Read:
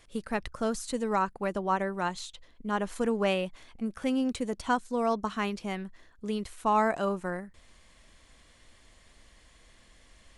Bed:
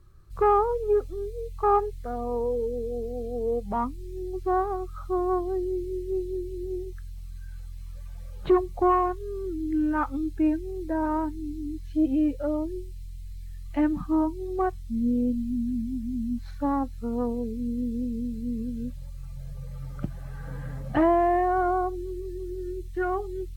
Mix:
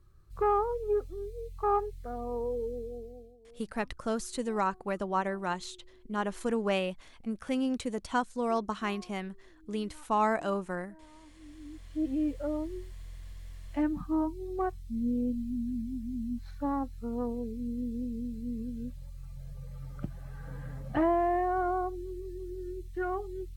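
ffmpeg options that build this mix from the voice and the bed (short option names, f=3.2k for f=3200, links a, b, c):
-filter_complex "[0:a]adelay=3450,volume=-2dB[a];[1:a]volume=18dB,afade=t=out:st=2.7:d=0.67:silence=0.0668344,afade=t=in:st=11.22:d=1.12:silence=0.0630957[b];[a][b]amix=inputs=2:normalize=0"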